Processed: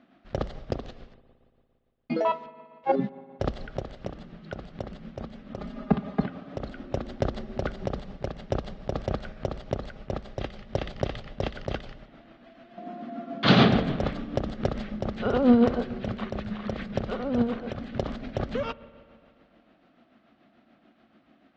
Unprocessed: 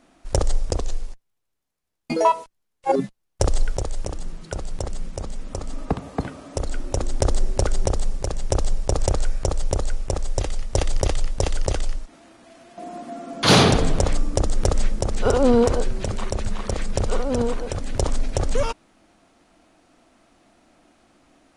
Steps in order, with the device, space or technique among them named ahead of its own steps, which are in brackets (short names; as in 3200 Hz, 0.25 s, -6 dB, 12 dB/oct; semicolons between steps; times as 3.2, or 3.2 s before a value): high shelf 5100 Hz -4.5 dB; 5.57–6.26 comb 4.9 ms, depth 93%; combo amplifier with spring reverb and tremolo (spring tank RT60 2.4 s, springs 57 ms, chirp 40 ms, DRR 17 dB; tremolo 6.9 Hz, depth 45%; speaker cabinet 83–3700 Hz, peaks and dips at 85 Hz -9 dB, 220 Hz +6 dB, 320 Hz -3 dB, 470 Hz -5 dB, 940 Hz -8 dB, 2400 Hz -3 dB)